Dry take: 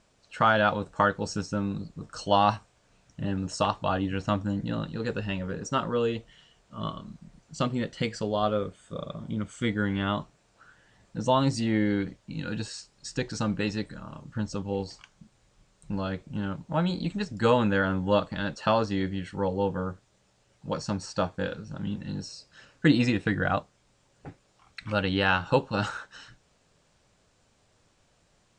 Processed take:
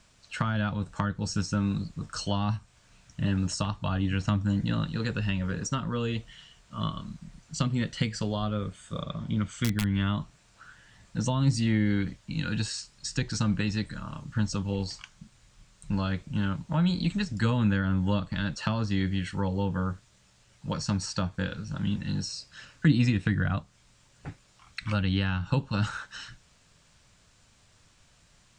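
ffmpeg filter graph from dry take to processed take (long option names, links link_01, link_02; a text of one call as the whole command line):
ffmpeg -i in.wav -filter_complex "[0:a]asettb=1/sr,asplit=3[link_01][link_02][link_03];[link_01]atrim=end=9.034[link_04];[link_02]atrim=start=9.03:end=9.94,asetpts=PTS-STARTPTS,afade=type=in:duration=0.004:curve=qsin,afade=type=out:start_time=0.906:duration=0.004:curve=qsin,lowpass=6400,aeval=exprs='(mod(7.08*val(0)+1,2)-1)/7.08':channel_layout=same[link_05];[link_03]atrim=start=9.936[link_06];[link_04][link_05]acrossfade=duration=0.004:curve1=hsin:curve2=qsin[link_07];[link_07][link_06]acrossfade=duration=0.004:curve1=qsin:curve2=hsin,equalizer=frequency=450:width_type=o:width=2:gain=-10,bandreject=frequency=790:width=21,acrossover=split=280[link_08][link_09];[link_09]acompressor=threshold=-38dB:ratio=10[link_10];[link_08][link_10]amix=inputs=2:normalize=0,volume=7dB" out.wav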